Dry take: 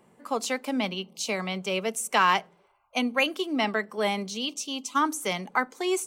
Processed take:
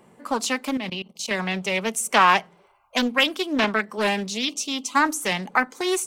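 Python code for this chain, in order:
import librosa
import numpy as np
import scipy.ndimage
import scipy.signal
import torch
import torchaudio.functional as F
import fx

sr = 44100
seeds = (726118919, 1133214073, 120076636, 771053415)

y = fx.dynamic_eq(x, sr, hz=490.0, q=1.1, threshold_db=-39.0, ratio=4.0, max_db=-5)
y = fx.level_steps(y, sr, step_db=18, at=(0.77, 1.31))
y = fx.doppler_dist(y, sr, depth_ms=0.5)
y = y * librosa.db_to_amplitude(6.0)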